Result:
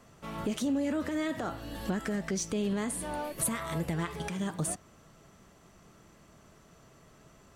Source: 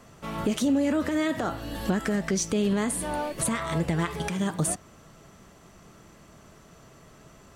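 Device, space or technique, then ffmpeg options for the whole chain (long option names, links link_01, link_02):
parallel distortion: -filter_complex "[0:a]asettb=1/sr,asplit=3[link_01][link_02][link_03];[link_01]atrim=end=3.244[link_04];[link_02]atrim=start=3.24:end=3.94,asetpts=PTS-STARTPTS,afade=type=in:duration=0.004:curve=qsin,afade=type=out:start_time=0.696:duration=0.004:curve=qsin,equalizer=frequency=12000:width_type=o:width=0.41:gain=13[link_05];[link_03]atrim=start=3.936[link_06];[link_04][link_05]acrossfade=duration=0.004:curve1=hsin:curve2=qsin[link_07];[link_07][link_06]acrossfade=duration=0.004:curve1=qsin:curve2=hsin,asplit=2[link_08][link_09];[link_09]asoftclip=type=hard:threshold=-23.5dB,volume=-13dB[link_10];[link_08][link_10]amix=inputs=2:normalize=0,volume=-7.5dB"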